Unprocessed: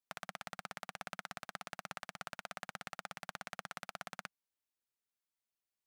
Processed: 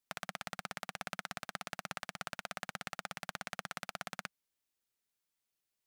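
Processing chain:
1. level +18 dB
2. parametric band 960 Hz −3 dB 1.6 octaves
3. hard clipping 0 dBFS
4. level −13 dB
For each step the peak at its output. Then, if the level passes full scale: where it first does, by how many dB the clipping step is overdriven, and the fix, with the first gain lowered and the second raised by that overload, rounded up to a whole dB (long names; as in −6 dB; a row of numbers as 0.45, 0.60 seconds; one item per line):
−3.0, −3.5, −3.5, −16.5 dBFS
no step passes full scale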